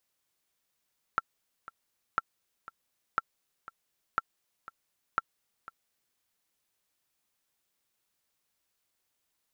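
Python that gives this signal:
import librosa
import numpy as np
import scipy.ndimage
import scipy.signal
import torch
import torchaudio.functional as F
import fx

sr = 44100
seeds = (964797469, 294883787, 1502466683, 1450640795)

y = fx.click_track(sr, bpm=120, beats=2, bars=5, hz=1350.0, accent_db=18.0, level_db=-13.0)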